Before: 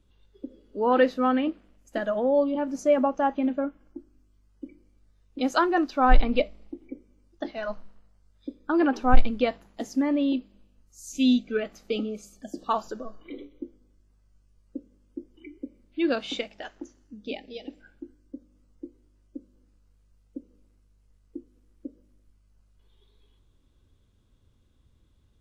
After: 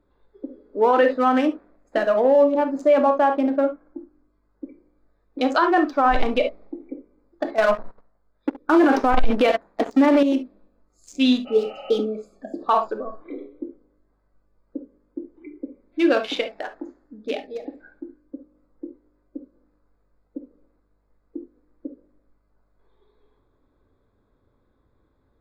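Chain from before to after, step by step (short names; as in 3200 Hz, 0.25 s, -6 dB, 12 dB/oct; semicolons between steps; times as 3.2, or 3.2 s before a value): Wiener smoothing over 15 samples; 11.49–11.95 spectral repair 530–3100 Hz after; reverb, pre-delay 7 ms, DRR 7 dB; 7.58–10.23 sample leveller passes 2; tone controls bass -14 dB, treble -5 dB; maximiser +16.5 dB; gain -7.5 dB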